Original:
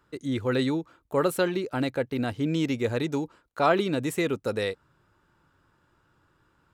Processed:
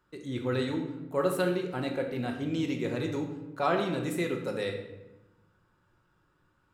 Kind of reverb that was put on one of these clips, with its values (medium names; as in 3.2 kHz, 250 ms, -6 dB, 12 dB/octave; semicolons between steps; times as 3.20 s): simulated room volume 440 m³, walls mixed, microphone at 1 m; trim -6.5 dB